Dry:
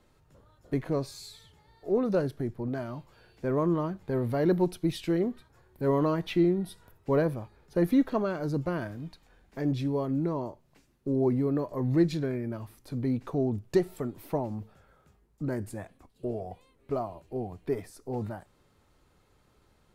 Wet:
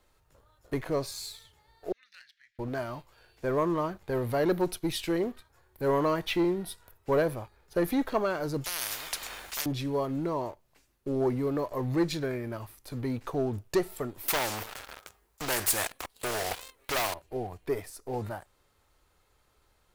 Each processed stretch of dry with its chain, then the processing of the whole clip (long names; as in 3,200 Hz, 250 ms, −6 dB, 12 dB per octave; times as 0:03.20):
0:01.92–0:02.59: elliptic high-pass filter 1,800 Hz, stop band 50 dB + high-frequency loss of the air 170 metres
0:08.64–0:09.66: low-shelf EQ 320 Hz −10 dB + every bin compressed towards the loudest bin 10 to 1
0:14.28–0:17.14: low-shelf EQ 260 Hz −11 dB + leveller curve on the samples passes 3 + every bin compressed towards the loudest bin 2 to 1
whole clip: high-shelf EQ 11,000 Hz +7.5 dB; leveller curve on the samples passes 1; parametric band 190 Hz −11 dB 2 octaves; level +1.5 dB